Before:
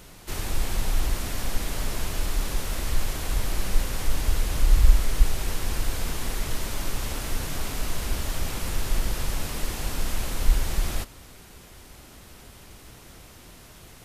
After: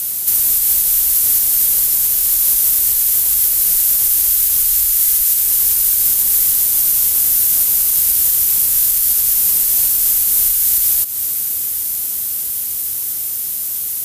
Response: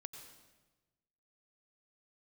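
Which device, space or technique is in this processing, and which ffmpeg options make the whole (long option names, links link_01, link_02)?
FM broadcast chain: -filter_complex "[0:a]highpass=frequency=57:poles=1,dynaudnorm=framelen=330:gausssize=21:maxgain=4dB,acrossover=split=970|2900[link_01][link_02][link_03];[link_01]acompressor=threshold=-37dB:ratio=4[link_04];[link_02]acompressor=threshold=-46dB:ratio=4[link_05];[link_03]acompressor=threshold=-41dB:ratio=4[link_06];[link_04][link_05][link_06]amix=inputs=3:normalize=0,aemphasis=mode=production:type=75fm,alimiter=limit=-22.5dB:level=0:latency=1:release=223,asoftclip=type=hard:threshold=-25dB,lowpass=frequency=15000:width=0.5412,lowpass=frequency=15000:width=1.3066,aemphasis=mode=production:type=75fm,volume=4.5dB"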